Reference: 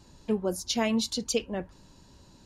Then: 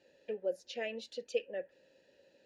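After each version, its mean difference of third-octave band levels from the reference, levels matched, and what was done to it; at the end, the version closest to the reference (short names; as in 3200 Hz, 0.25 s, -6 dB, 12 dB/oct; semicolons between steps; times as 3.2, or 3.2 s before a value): 8.0 dB: low shelf 210 Hz -8 dB; in parallel at -2 dB: compressor, threshold -40 dBFS, peak gain reduction 15.5 dB; on the sum: vowel filter e; gain +2 dB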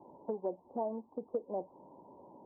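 12.0 dB: steep low-pass 970 Hz 72 dB/oct; compressor 6:1, threshold -39 dBFS, peak gain reduction 16 dB; HPF 450 Hz 12 dB/oct; gain +10 dB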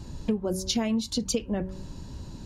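5.5 dB: low shelf 300 Hz +11.5 dB; de-hum 188.4 Hz, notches 3; compressor 6:1, threshold -31 dBFS, peak gain reduction 14 dB; gain +6.5 dB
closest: third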